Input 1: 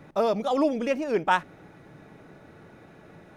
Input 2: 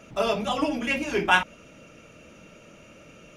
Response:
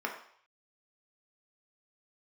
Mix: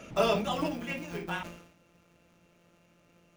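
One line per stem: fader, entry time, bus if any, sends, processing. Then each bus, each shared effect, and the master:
-16.5 dB, 0.00 s, no send, sorted samples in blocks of 256 samples; de-esser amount 95%
+2.0 dB, 0.00 s, no send, auto duck -20 dB, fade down 1.35 s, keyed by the first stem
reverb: none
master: decay stretcher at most 78 dB/s

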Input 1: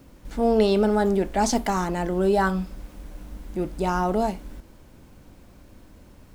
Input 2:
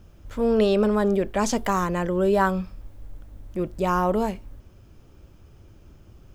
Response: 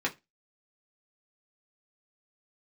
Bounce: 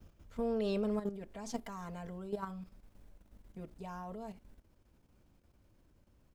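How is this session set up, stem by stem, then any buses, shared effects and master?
-18.0 dB, 0.00 s, no send, none
-4.5 dB, 4.7 ms, no send, auto duck -13 dB, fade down 1.25 s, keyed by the first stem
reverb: none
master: level held to a coarse grid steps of 11 dB

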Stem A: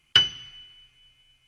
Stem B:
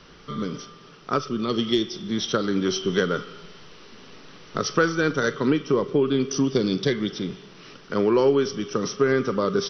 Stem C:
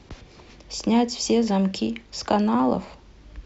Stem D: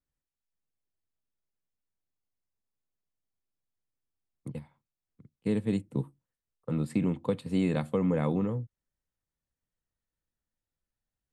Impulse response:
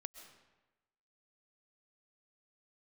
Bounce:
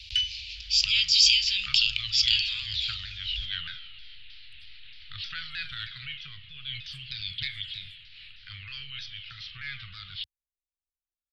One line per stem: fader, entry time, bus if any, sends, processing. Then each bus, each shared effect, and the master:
-0.5 dB, 0.00 s, no send, auto duck -8 dB, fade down 0.30 s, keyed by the third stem
+3.0 dB, 0.55 s, no send, steep low-pass 4.4 kHz 72 dB/octave; vibrato with a chosen wave saw down 3.2 Hz, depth 160 cents
+1.0 dB, 0.00 s, no send, high-order bell 3.5 kHz +15.5 dB 1.3 oct
-13.5 dB, 0.05 s, no send, compression, threshold -29 dBFS, peak gain reduction 7 dB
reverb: none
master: inverse Chebyshev band-stop 220–860 Hz, stop band 60 dB; transient shaper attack -4 dB, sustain +3 dB

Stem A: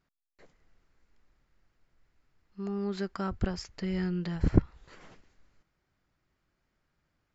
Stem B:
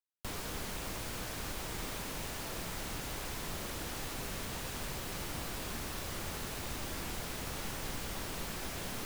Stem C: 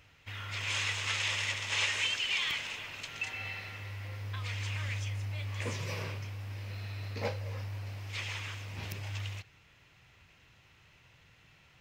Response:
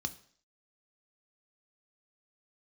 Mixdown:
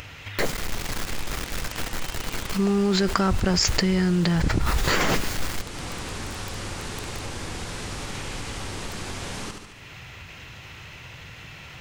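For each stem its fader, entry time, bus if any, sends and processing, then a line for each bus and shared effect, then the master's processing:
-4.5 dB, 0.00 s, no send, no echo send, treble shelf 3 kHz +4.5 dB; bit crusher 11-bit; level flattener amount 100%
+1.0 dB, 0.45 s, no send, echo send -6.5 dB, low-pass 9.3 kHz 24 dB/octave; band-stop 640 Hz, Q 12
+0.5 dB, 0.00 s, no send, no echo send, compression 2.5:1, threshold -50 dBFS, peak gain reduction 15.5 dB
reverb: none
echo: feedback delay 72 ms, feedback 44%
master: upward compressor, threshold -25 dBFS

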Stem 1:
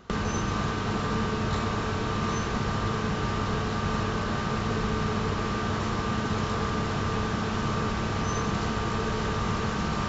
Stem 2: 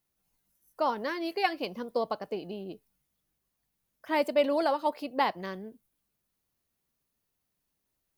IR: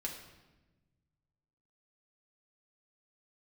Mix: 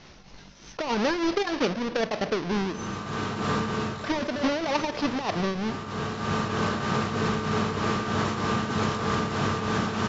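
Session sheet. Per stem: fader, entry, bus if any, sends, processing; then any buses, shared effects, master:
+1.5 dB, 2.45 s, no send, high-pass 110 Hz 12 dB/octave; auto duck -15 dB, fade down 0.35 s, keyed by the second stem
+1.5 dB, 0.00 s, send -14.5 dB, square wave that keeps the level; steep low-pass 6.1 kHz 72 dB/octave; compressor with a negative ratio -26 dBFS, ratio -0.5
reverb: on, RT60 1.1 s, pre-delay 5 ms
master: tremolo triangle 3.2 Hz, depth 80%; level flattener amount 50%

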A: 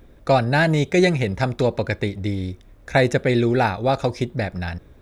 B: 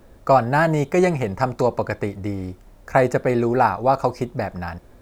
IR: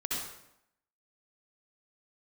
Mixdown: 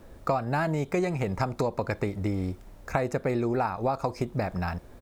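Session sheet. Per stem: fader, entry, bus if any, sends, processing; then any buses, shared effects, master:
-17.5 dB, 0.00 s, no send, none
-0.5 dB, 0.9 ms, no send, none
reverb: none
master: compression 6:1, threshold -24 dBFS, peak gain reduction 12.5 dB

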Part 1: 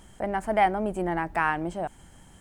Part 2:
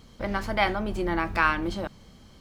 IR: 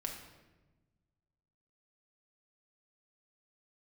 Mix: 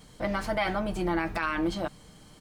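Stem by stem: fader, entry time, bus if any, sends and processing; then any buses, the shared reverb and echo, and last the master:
-7.5 dB, 0.00 s, no send, treble shelf 6.7 kHz +7.5 dB
-0.5 dB, 2.4 ms, polarity flipped, no send, bass shelf 110 Hz -6.5 dB; comb 6.6 ms, depth 44%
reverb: none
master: peak limiter -18 dBFS, peak gain reduction 10 dB

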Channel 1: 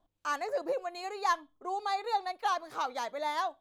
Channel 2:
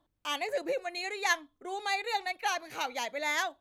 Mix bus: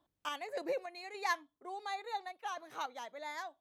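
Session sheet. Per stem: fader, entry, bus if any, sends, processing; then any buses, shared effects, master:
-9.5 dB, 0.00 s, no send, high-pass 140 Hz 24 dB/octave
-2.0 dB, 0.00 s, polarity flipped, no send, auto duck -11 dB, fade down 1.75 s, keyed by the first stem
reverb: none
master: high-pass 88 Hz 6 dB/octave; random-step tremolo

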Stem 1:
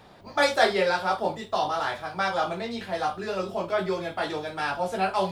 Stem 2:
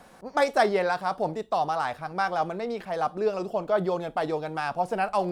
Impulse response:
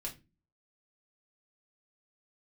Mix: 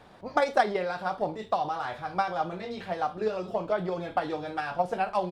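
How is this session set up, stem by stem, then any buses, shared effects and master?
-2.5 dB, 0.00 s, no send, compression, threshold -31 dBFS, peak gain reduction 15.5 dB
-8.0 dB, 0.8 ms, no send, transient shaper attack +10 dB, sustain +6 dB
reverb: none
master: treble shelf 7.1 kHz -11 dB

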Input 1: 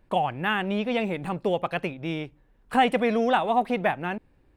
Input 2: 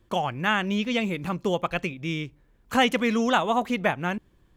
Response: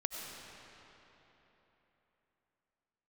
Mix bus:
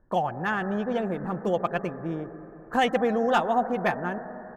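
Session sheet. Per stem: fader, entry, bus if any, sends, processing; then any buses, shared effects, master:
-4.0 dB, 0.00 s, send -6.5 dB, Chebyshev low-pass 1.8 kHz, order 6
-13.0 dB, 6 ms, no send, harmonic-percussive split percussive +9 dB; waveshaping leveller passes 1; upward expansion 2.5:1, over -29 dBFS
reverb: on, RT60 3.7 s, pre-delay 55 ms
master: none

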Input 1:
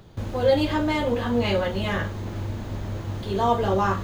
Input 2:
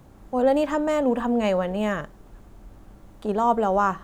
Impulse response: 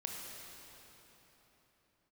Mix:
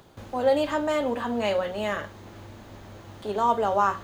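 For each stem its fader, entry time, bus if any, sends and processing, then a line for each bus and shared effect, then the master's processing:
0.0 dB, 0.00 s, no send, auto duck -7 dB, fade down 0.30 s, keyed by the second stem
-1.5 dB, 0.00 s, no send, high-pass 250 Hz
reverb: none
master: bass shelf 250 Hz -10.5 dB

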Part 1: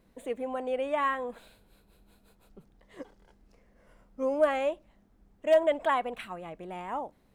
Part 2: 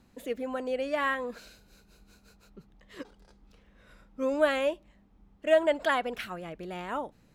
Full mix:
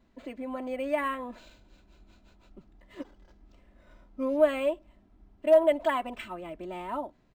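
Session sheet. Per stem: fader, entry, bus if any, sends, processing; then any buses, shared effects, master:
-5.5 dB, 0.00 s, no send, comb 3 ms, depth 79%
-7.0 dB, 3.1 ms, no send, compression 1.5:1, threshold -37 dBFS, peak gain reduction 7.5 dB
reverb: none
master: level rider gain up to 3 dB; decimation joined by straight lines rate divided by 4×

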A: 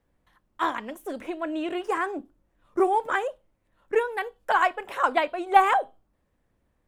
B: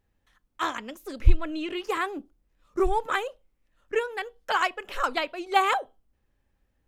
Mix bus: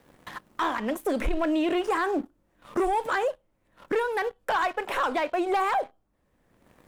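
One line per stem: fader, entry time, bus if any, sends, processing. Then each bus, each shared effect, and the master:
-2.5 dB, 0.00 s, no send, three bands compressed up and down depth 70%
+1.5 dB, 0.00 s, polarity flipped, no send, loudest bins only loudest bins 1; auto duck -10 dB, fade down 1.65 s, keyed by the first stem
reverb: none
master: waveshaping leveller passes 2; peak limiter -19.5 dBFS, peak gain reduction 7 dB

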